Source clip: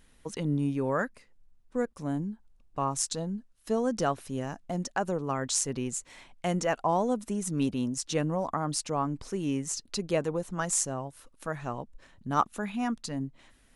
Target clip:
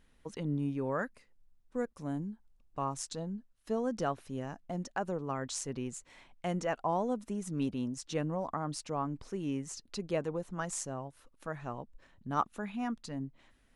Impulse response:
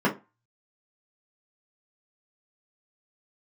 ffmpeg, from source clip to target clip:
-af "asetnsamples=nb_out_samples=441:pad=0,asendcmd='1.02 highshelf g -2;2.94 highshelf g -9',highshelf=frequency=5700:gain=-9.5,volume=-5dB"

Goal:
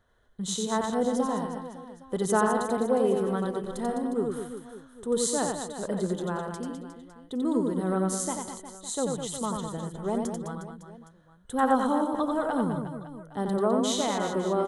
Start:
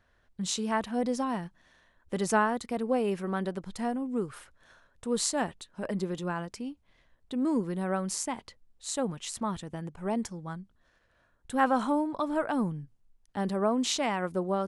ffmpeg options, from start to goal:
ffmpeg -i in.wav -filter_complex "[0:a]superequalizer=7b=1.58:11b=0.631:12b=0.282:14b=0.501:16b=1.41,asplit=2[link_01][link_02];[link_02]aecho=0:1:90|207|359.1|556.8|813.9:0.631|0.398|0.251|0.158|0.1[link_03];[link_01][link_03]amix=inputs=2:normalize=0" out.wav

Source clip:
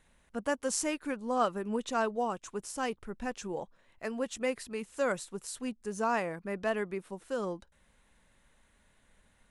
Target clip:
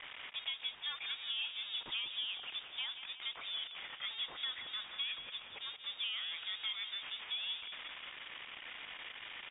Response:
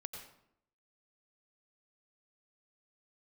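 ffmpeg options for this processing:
-filter_complex "[0:a]aeval=exprs='val(0)+0.5*0.0251*sgn(val(0))':channel_layout=same,highpass=530,highshelf=frequency=2100:gain=-6,acompressor=threshold=-33dB:ratio=6,asplit=2[link_01][link_02];[link_02]aecho=0:1:179|358|537|716|895|1074|1253:0.316|0.18|0.103|0.0586|0.0334|0.019|0.0108[link_03];[link_01][link_03]amix=inputs=2:normalize=0,lowpass=frequency=3300:width_type=q:width=0.5098,lowpass=frequency=3300:width_type=q:width=0.6013,lowpass=frequency=3300:width_type=q:width=0.9,lowpass=frequency=3300:width_type=q:width=2.563,afreqshift=-3900,volume=-3dB"

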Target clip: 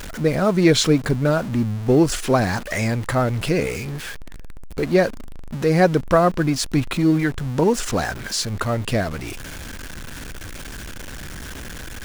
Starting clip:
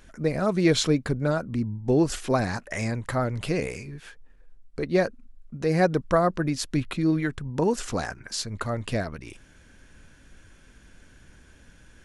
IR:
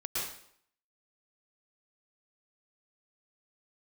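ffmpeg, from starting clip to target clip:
-af "aeval=exprs='val(0)+0.5*0.02*sgn(val(0))':channel_layout=same,volume=5dB"

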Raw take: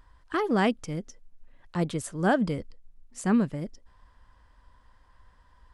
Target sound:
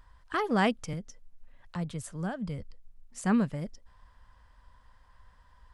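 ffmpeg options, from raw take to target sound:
ffmpeg -i in.wav -filter_complex "[0:a]equalizer=frequency=330:width_type=o:width=0.73:gain=-7.5,asettb=1/sr,asplit=3[link_01][link_02][link_03];[link_01]atrim=end=0.934[link_04];[link_02]atrim=start=0.93:end=3.23,asetpts=PTS-STARTPTS,afade=type=in:duration=0.004:curve=qsin,afade=type=out:start_time=2.296:duration=0.004:curve=qsin,acrossover=split=160[link_05][link_06];[link_06]acompressor=threshold=-41dB:ratio=2.5[link_07];[link_05][link_07]amix=inputs=2:normalize=0[link_08];[link_03]atrim=start=3.226[link_09];[link_04][link_08]acrossfade=duration=0.004:curve1=hsin:curve2=qsin[link_10];[link_10][link_09]acrossfade=duration=0.004:curve1=qsin:curve2=hsin" out.wav

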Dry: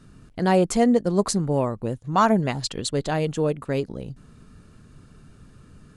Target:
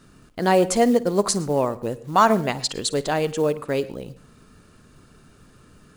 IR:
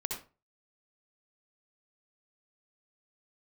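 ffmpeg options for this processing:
-filter_complex "[0:a]acrusher=bits=8:mode=log:mix=0:aa=0.000001,bass=frequency=250:gain=-8,treble=frequency=4000:gain=1,asplit=2[link_01][link_02];[1:a]atrim=start_sample=2205,asetrate=52920,aresample=44100,adelay=54[link_03];[link_02][link_03]afir=irnorm=-1:irlink=0,volume=-17dB[link_04];[link_01][link_04]amix=inputs=2:normalize=0,volume=3dB"

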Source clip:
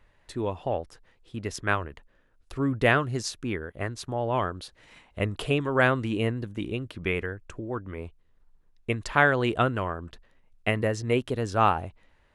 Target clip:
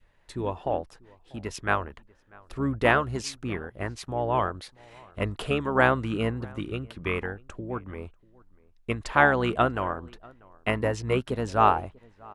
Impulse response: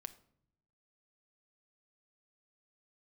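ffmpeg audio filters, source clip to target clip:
-filter_complex "[0:a]asplit=2[link_01][link_02];[link_02]asetrate=22050,aresample=44100,atempo=2,volume=-10dB[link_03];[link_01][link_03]amix=inputs=2:normalize=0,adynamicequalizer=threshold=0.0178:dfrequency=920:dqfactor=0.97:tfrequency=920:tqfactor=0.97:attack=5:release=100:ratio=0.375:range=2.5:mode=boostabove:tftype=bell,asplit=2[link_04][link_05];[link_05]adelay=641.4,volume=-25dB,highshelf=frequency=4000:gain=-14.4[link_06];[link_04][link_06]amix=inputs=2:normalize=0,volume=-2dB"

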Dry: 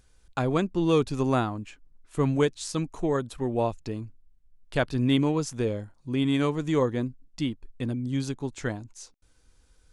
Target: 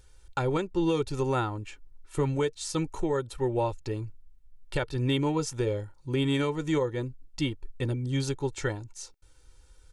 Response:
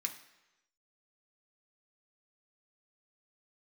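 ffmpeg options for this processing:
-af "bandreject=frequency=460:width=12,aecho=1:1:2.2:0.67,alimiter=limit=-19dB:level=0:latency=1:release=433,volume=1.5dB"

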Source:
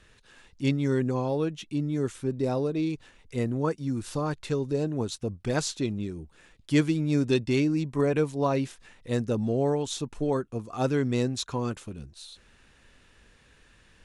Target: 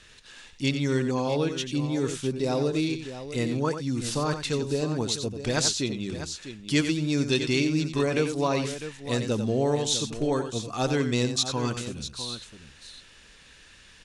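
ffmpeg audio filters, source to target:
ffmpeg -i in.wav -filter_complex "[0:a]equalizer=frequency=4900:width=0.46:gain=10.5,bandreject=frequency=50:width_type=h:width=6,bandreject=frequency=100:width_type=h:width=6,asplit=2[link_01][link_02];[link_02]alimiter=limit=-19dB:level=0:latency=1:release=329,volume=0dB[link_03];[link_01][link_03]amix=inputs=2:normalize=0,aecho=1:1:90|651:0.355|0.266,volume=-5dB" out.wav

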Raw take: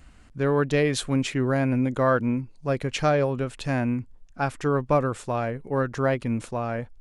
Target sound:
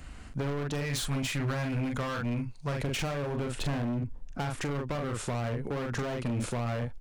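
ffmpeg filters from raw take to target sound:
ffmpeg -i in.wav -filter_complex "[0:a]asettb=1/sr,asplit=3[link_01][link_02][link_03];[link_01]atrim=end=0.814[link_04];[link_02]atrim=start=0.81:end=2.79,asetpts=PTS-STARTPTS,afade=type=in:duration=0.004:curve=qsin,afade=type=out:start_time=1.976:duration=0.004:curve=qsin,equalizer=frequency=360:width_type=o:width=1.6:gain=-10.5[link_05];[link_03]atrim=start=2.786[link_06];[link_04][link_05]acrossfade=duration=0.004:curve1=hsin:curve2=qsin[link_07];[link_07][link_06]acrossfade=duration=0.004:curve1=qsin:curve2=hsin,asplit=2[link_08][link_09];[link_09]adelay=42,volume=-5dB[link_10];[link_08][link_10]amix=inputs=2:normalize=0,asettb=1/sr,asplit=3[link_11][link_12][link_13];[link_11]atrim=end=3.574[link_14];[link_12]atrim=start=3.57:end=4.45,asetpts=PTS-STARTPTS,afade=type=in:duration=0.004:curve=qsin,afade=type=out:start_time=0.876:duration=0.004:curve=qsin,tiltshelf=frequency=1400:gain=3.5[link_15];[link_13]atrim=start=4.446[link_16];[link_14][link_15]acrossfade=duration=0.004:curve1=hsin:curve2=qsin[link_17];[link_17][link_16]acrossfade=duration=0.004:curve1=qsin:curve2=hsin,acompressor=threshold=-25dB:ratio=4,asoftclip=type=hard:threshold=-31.5dB,acrossover=split=170[link_18][link_19];[link_19]acompressor=threshold=-36dB:ratio=6[link_20];[link_18][link_20]amix=inputs=2:normalize=0,volume=5dB" out.wav

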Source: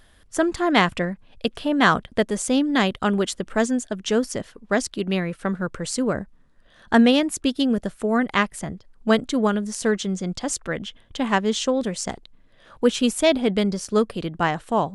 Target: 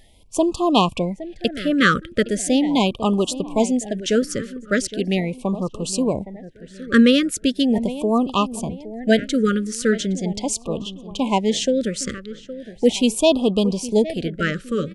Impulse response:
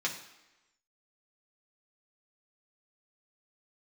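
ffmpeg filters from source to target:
-filter_complex "[0:a]asplit=2[link_01][link_02];[link_02]adelay=815,lowpass=frequency=1800:poles=1,volume=-14dB,asplit=2[link_03][link_04];[link_04]adelay=815,lowpass=frequency=1800:poles=1,volume=0.4,asplit=2[link_05][link_06];[link_06]adelay=815,lowpass=frequency=1800:poles=1,volume=0.4,asplit=2[link_07][link_08];[link_08]adelay=815,lowpass=frequency=1800:poles=1,volume=0.4[link_09];[link_01][link_03][link_05][link_07][link_09]amix=inputs=5:normalize=0,afftfilt=real='re*(1-between(b*sr/1024,810*pow(1800/810,0.5+0.5*sin(2*PI*0.39*pts/sr))/1.41,810*pow(1800/810,0.5+0.5*sin(2*PI*0.39*pts/sr))*1.41))':imag='im*(1-between(b*sr/1024,810*pow(1800/810,0.5+0.5*sin(2*PI*0.39*pts/sr))/1.41,810*pow(1800/810,0.5+0.5*sin(2*PI*0.39*pts/sr))*1.41))':win_size=1024:overlap=0.75,volume=2.5dB"

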